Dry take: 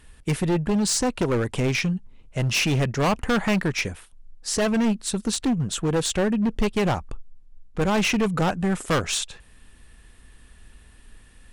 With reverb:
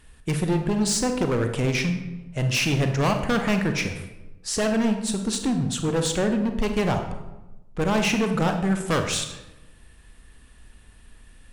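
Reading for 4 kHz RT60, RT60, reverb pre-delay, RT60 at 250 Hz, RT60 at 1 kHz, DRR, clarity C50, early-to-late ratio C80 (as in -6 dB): 0.65 s, 1.0 s, 29 ms, 1.2 s, 0.95 s, 5.5 dB, 7.0 dB, 10.0 dB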